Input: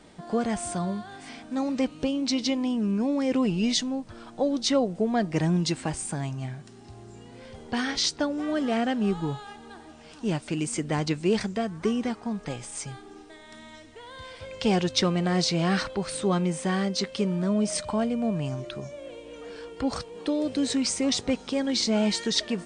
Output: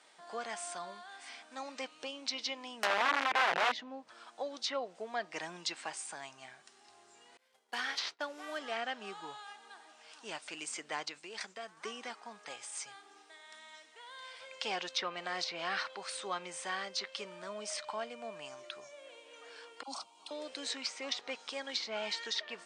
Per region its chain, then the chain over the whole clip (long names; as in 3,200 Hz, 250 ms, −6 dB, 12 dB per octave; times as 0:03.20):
0:02.83–0:04.08: spectral tilt −3 dB per octave + wrap-around overflow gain 16 dB
0:07.37–0:08.59: variable-slope delta modulation 64 kbit/s + downward expander −34 dBFS
0:11.03–0:11.77: downward expander −34 dBFS + downward compressor, threshold −27 dBFS
0:19.83–0:20.31: phaser with its sweep stopped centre 470 Hz, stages 6 + all-pass dispersion lows, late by 47 ms, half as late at 1,000 Hz
whole clip: high-pass filter 890 Hz 12 dB per octave; treble cut that deepens with the level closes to 2,700 Hz, closed at −24.5 dBFS; level −4 dB